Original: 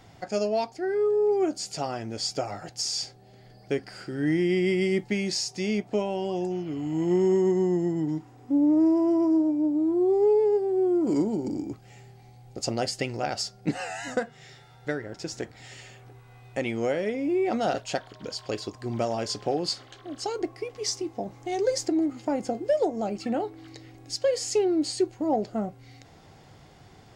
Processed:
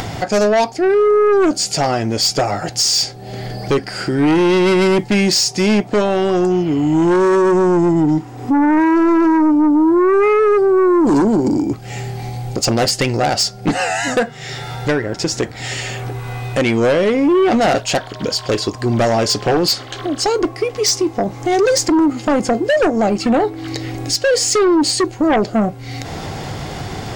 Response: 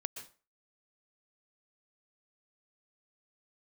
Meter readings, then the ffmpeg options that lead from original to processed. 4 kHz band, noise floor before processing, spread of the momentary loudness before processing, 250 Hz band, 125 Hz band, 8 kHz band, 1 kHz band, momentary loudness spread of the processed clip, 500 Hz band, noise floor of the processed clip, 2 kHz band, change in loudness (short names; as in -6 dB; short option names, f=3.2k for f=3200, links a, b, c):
+14.5 dB, -52 dBFS, 13 LU, +11.5 dB, +13.5 dB, +15.0 dB, +15.0 dB, 12 LU, +11.0 dB, -33 dBFS, +15.5 dB, +11.5 dB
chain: -af "acompressor=mode=upward:threshold=-32dB:ratio=2.5,aeval=exprs='0.188*(cos(1*acos(clip(val(0)/0.188,-1,1)))-cos(1*PI/2))+0.0668*(cos(5*acos(clip(val(0)/0.188,-1,1)))-cos(5*PI/2))':c=same,volume=7.5dB"